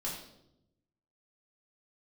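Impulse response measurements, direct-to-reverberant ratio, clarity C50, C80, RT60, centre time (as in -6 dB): -5.5 dB, 3.5 dB, 6.5 dB, 0.80 s, 41 ms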